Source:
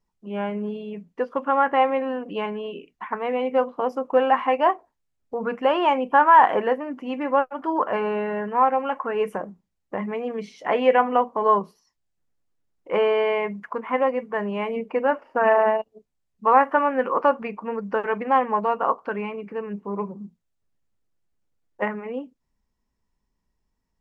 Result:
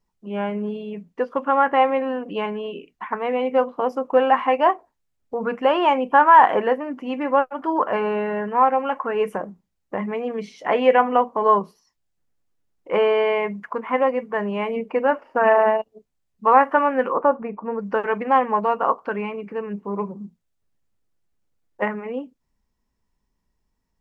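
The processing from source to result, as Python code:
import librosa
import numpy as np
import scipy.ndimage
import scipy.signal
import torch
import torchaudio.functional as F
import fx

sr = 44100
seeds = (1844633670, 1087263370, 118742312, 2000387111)

y = fx.lowpass(x, sr, hz=fx.line((17.12, 1100.0), (17.78, 1400.0)), slope=12, at=(17.12, 17.78), fade=0.02)
y = F.gain(torch.from_numpy(y), 2.0).numpy()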